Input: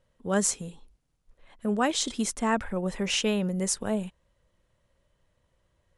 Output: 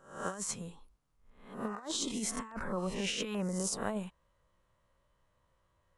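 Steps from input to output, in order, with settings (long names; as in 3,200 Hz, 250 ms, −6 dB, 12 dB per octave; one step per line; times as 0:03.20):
peak hold with a rise ahead of every peak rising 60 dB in 0.51 s
parametric band 1,100 Hz +9.5 dB 0.8 octaves
compressor whose output falls as the input rises −26 dBFS, ratio −0.5
0:01.68–0:03.78: auto-filter notch saw down 1.2 Hz 600–4,000 Hz
level −9 dB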